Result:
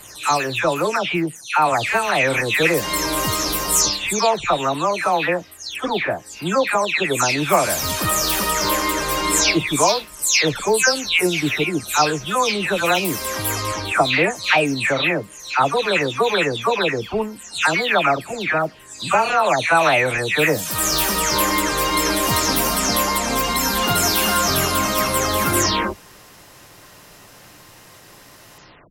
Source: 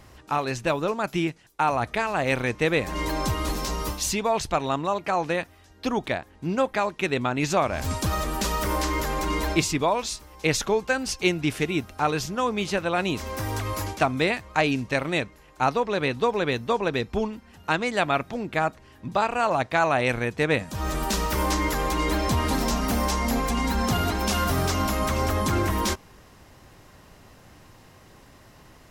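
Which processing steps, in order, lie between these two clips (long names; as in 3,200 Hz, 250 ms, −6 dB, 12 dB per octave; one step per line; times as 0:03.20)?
every frequency bin delayed by itself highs early, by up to 318 ms
spectral tilt +2 dB per octave
level +7.5 dB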